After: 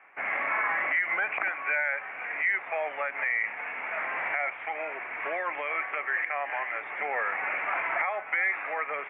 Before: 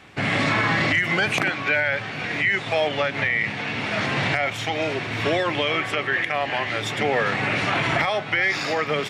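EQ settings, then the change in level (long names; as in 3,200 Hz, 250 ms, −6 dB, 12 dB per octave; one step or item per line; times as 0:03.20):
flat-topped band-pass 1,700 Hz, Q 0.51
elliptic low-pass filter 2,300 Hz, stop band 50 dB
−4.5 dB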